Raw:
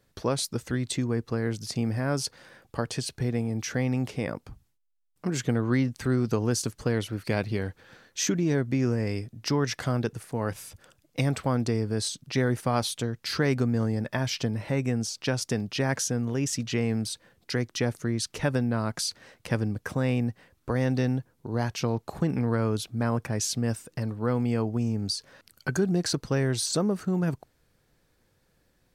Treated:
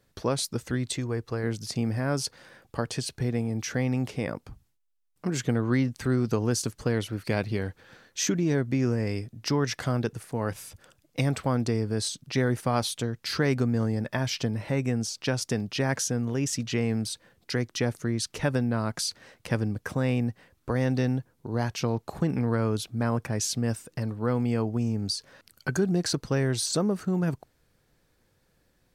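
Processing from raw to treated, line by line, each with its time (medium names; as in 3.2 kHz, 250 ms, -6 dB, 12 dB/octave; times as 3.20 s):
0.92–1.44 s: peaking EQ 210 Hz -7.5 dB 0.82 oct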